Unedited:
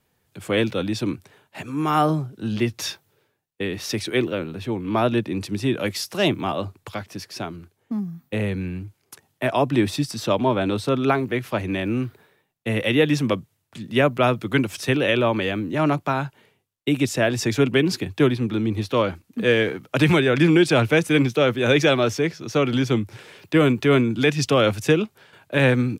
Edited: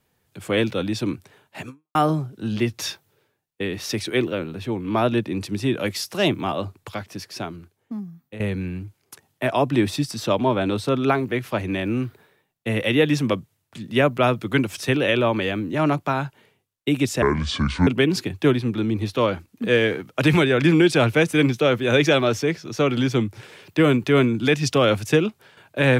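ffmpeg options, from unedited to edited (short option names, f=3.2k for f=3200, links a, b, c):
-filter_complex "[0:a]asplit=5[a][b][c][d][e];[a]atrim=end=1.95,asetpts=PTS-STARTPTS,afade=t=out:st=1.69:d=0.26:c=exp[f];[b]atrim=start=1.95:end=8.4,asetpts=PTS-STARTPTS,afade=t=in:d=0.004:c=hsin,afade=t=out:st=5.5:d=0.95:silence=0.237137[g];[c]atrim=start=8.4:end=17.224,asetpts=PTS-STARTPTS,afade=t=in:d=0.004:c=hsin:silence=0.237137[h];[d]atrim=start=17.22:end=17.63,asetpts=PTS-STARTPTS,asetrate=27783,aresample=44100[i];[e]atrim=start=17.626[j];[f][g][h]concat=n=3:v=0:a=1[k];[k][i]acrossfade=d=0.004:c1=hsin:c2=hsin[l];[l][j]acrossfade=d=0.004:c1=hsin:c2=hsin"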